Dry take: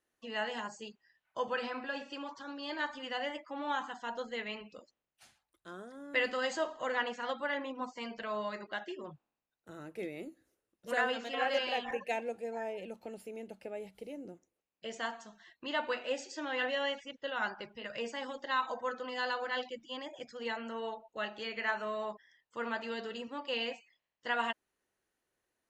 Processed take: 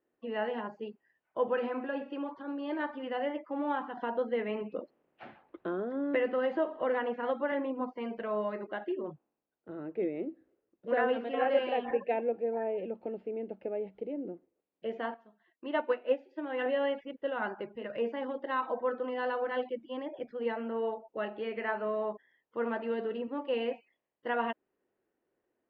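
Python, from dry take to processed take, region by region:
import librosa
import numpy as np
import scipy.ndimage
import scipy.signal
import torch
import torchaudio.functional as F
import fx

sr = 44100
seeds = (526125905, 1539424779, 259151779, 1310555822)

y = fx.chain(x, sr, fx.high_shelf(hz=7000.0, db=-8.5),
    fx.band_squash(depth_pct=70), at=(3.97, 7.52))
y = fx.chain(y, sr, fx.low_shelf(hz=150.0, db=-6.0),
    fx.transient(attack_db=3, sustain_db=-1),
    fx.upward_expand(threshold_db=-49.0, expansion=1.5), at=(15.14, 16.66))
y = scipy.signal.sosfilt(scipy.signal.butter(4, 3000.0, 'lowpass', fs=sr, output='sos'), y)
y = fx.peak_eq(y, sr, hz=360.0, db=15.0, octaves=2.6)
y = y * 10.0 ** (-6.0 / 20.0)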